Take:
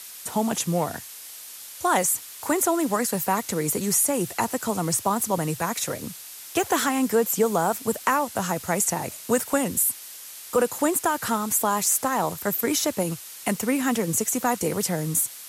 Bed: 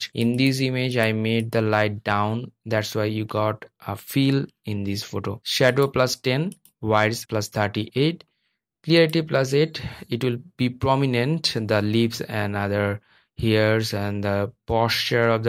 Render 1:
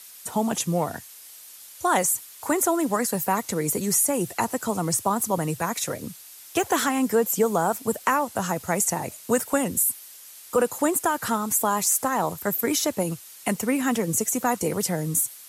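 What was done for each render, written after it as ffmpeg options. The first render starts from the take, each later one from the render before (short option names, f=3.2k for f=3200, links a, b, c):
-af "afftdn=nr=6:nf=-41"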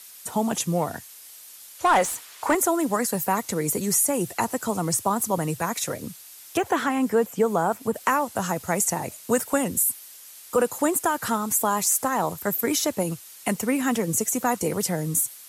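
-filter_complex "[0:a]asettb=1/sr,asplit=3[a][b][c];[a]atrim=end=1.794[d];[b]atrim=start=1.79:end=2.55,asetpts=PTS-STARTPTS,afade=t=in:d=0.004:c=qsin,afade=t=out:st=0.756:d=0.004:c=qsin,asplit=2[e][f];[f]highpass=f=720:p=1,volume=17dB,asoftclip=type=tanh:threshold=-9.5dB[g];[e][g]amix=inputs=2:normalize=0,lowpass=f=1.8k:p=1,volume=-6dB[h];[c]atrim=start=2.546[i];[d][h]acrossfade=d=0.004:c1=hsin:c2=qsin[j];[j][i]acrossfade=d=0.004:c1=qsin:c2=hsin,asettb=1/sr,asplit=3[k][l][m];[k]atrim=end=6.574[n];[l]atrim=start=6.57:end=7.96,asetpts=PTS-STARTPTS,afade=t=in:d=0.004:c=qsin,afade=t=out:st=1.386:d=0.004:c=qsin,acrossover=split=3100[o][p];[p]acompressor=threshold=-41dB:ratio=4:attack=1:release=60[q];[o][q]amix=inputs=2:normalize=0[r];[m]atrim=start=7.956[s];[n][r]acrossfade=d=0.004:c1=hsin:c2=qsin[t];[t][s]acrossfade=d=0.004:c1=qsin:c2=hsin"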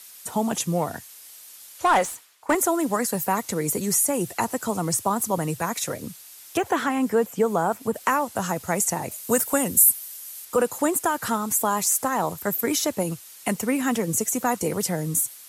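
-filter_complex "[0:a]asettb=1/sr,asplit=3[a][b][c];[a]atrim=end=9.114[d];[b]atrim=start=9.11:end=10.45,asetpts=PTS-STARTPTS,afade=t=in:d=0.004:c=qsin,afade=t=out:st=1.336:d=0.004:c=qsin,highshelf=f=9k:g=11[e];[c]atrim=start=10.446[f];[d][e]acrossfade=d=0.004:c1=hsin:c2=qsin[g];[g][f]acrossfade=d=0.004:c1=qsin:c2=hsin,asplit=2[h][i];[h]atrim=end=2.49,asetpts=PTS-STARTPTS,afade=t=out:st=1.97:d=0.52:c=qua:silence=0.11885[j];[i]atrim=start=2.49,asetpts=PTS-STARTPTS,afade=t=in:d=0.004:c=hsin:silence=0.11885[k];[j][k]concat=n=2:v=0:a=1"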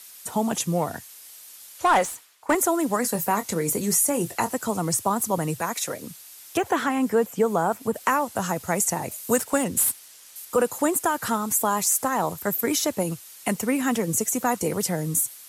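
-filter_complex "[0:a]asettb=1/sr,asplit=3[a][b][c];[a]atrim=end=3.014[d];[b]atrim=start=3.01:end=4.52,asetpts=PTS-STARTPTS,afade=t=in:d=0.004:c=qsin,afade=t=out:st=1.506:d=0.004:c=qsin,asplit=2[e][f];[f]adelay=24,volume=-11dB[g];[e][g]amix=inputs=2:normalize=0,atrim=end_sample=66591[h];[c]atrim=start=4.516[i];[d][h]acrossfade=d=0.004:c1=hsin:c2=qsin[j];[j][i]acrossfade=d=0.004:c1=qsin:c2=hsin,asettb=1/sr,asplit=3[k][l][m];[k]atrim=end=5.614[n];[l]atrim=start=5.61:end=6.11,asetpts=PTS-STARTPTS,afade=t=in:d=0.004:c=qsin,afade=t=out:st=0.496:d=0.004:c=qsin,highpass=f=260:p=1[o];[m]atrim=start=6.106[p];[n][o]acrossfade=d=0.004:c1=hsin:c2=qsin[q];[q][p]acrossfade=d=0.004:c1=qsin:c2=hsin,asettb=1/sr,asplit=3[r][s][t];[r]atrim=end=9.364[u];[s]atrim=start=9.36:end=10.36,asetpts=PTS-STARTPTS,afade=t=in:d=0.004:c=qsin,afade=t=out:st=0.996:d=0.004:c=qsin,adynamicsmooth=sensitivity=5:basefreq=6.4k[v];[t]atrim=start=10.356[w];[u][v]acrossfade=d=0.004:c1=hsin:c2=qsin[x];[x][w]acrossfade=d=0.004:c1=qsin:c2=hsin"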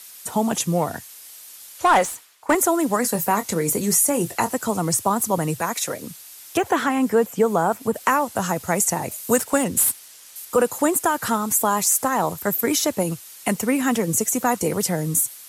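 -af "volume=3dB"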